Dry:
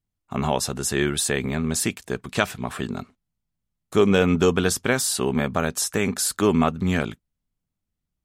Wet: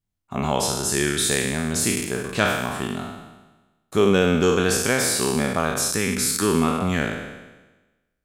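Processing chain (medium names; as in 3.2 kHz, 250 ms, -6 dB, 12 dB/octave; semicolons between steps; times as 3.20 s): spectral sustain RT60 1.17 s; 5.92–6.79 s: peaking EQ 650 Hz -8.5 dB 0.67 oct; trim -2 dB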